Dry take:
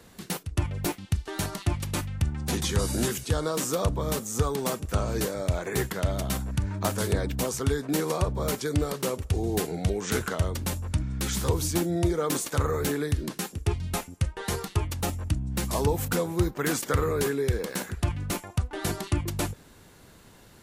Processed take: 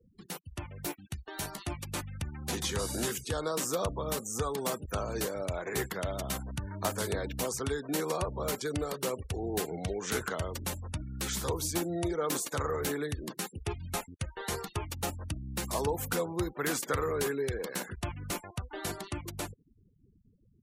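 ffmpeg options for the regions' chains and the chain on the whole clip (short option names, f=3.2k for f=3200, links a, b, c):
-filter_complex "[0:a]asettb=1/sr,asplit=3[a][b][c];[a]atrim=end=0.784[d];[b]atrim=start=0.78:end=1.8,asetpts=PTS-STARTPTS,afade=t=in:d=0.004:c=qsin,afade=t=out:st=1.016:d=0.004:c=qsin,highshelf=f=11k:g=5,acrusher=bits=8:mode=log:mix=0:aa=0.000001,asplit=2[e][f];[f]adelay=14,volume=-9.5dB[g];[e][g]amix=inputs=2:normalize=0,atrim=end_sample=44982[h];[c]atrim=start=1.796[i];[d][h]acrossfade=d=0.004:c1=hsin:c2=qsin[j];[j][i]acrossfade=d=0.004:c1=qsin:c2=hsin,acrossover=split=350|3000[k][l][m];[k]acompressor=threshold=-44dB:ratio=1.5[n];[n][l][m]amix=inputs=3:normalize=0,afftfilt=real='re*gte(hypot(re,im),0.00891)':imag='im*gte(hypot(re,im),0.00891)':win_size=1024:overlap=0.75,dynaudnorm=f=110:g=31:m=4.5dB,volume=-7.5dB"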